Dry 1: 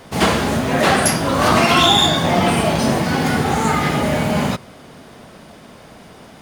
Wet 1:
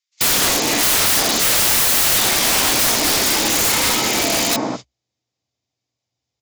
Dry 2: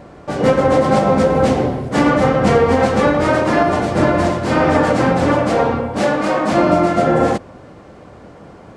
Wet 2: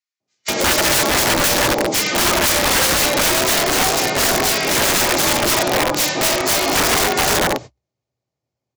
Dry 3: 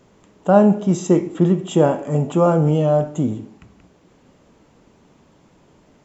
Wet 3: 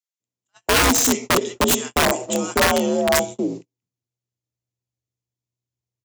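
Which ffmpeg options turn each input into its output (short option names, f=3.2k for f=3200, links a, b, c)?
-filter_complex "[0:a]acrossover=split=150|650[a][b][c];[a]acompressor=threshold=-38dB:ratio=6[d];[d][b][c]amix=inputs=3:normalize=0,equalizer=f=2.9k:w=1.7:g=-7,aeval=exprs='val(0)+0.00316*(sin(2*PI*60*n/s)+sin(2*PI*2*60*n/s)/2+sin(2*PI*3*60*n/s)/3+sin(2*PI*4*60*n/s)/4+sin(2*PI*5*60*n/s)/5)':c=same,asubboost=boost=6.5:cutoff=54,acrossover=split=1400[e][f];[e]adelay=200[g];[g][f]amix=inputs=2:normalize=0,aresample=16000,aresample=44100,agate=range=-45dB:threshold=-29dB:ratio=16:detection=peak,aexciter=amount=6.8:drive=3.3:freq=2.1k,afreqshift=62,aeval=exprs='(mod(3.35*val(0)+1,2)-1)/3.35':c=same"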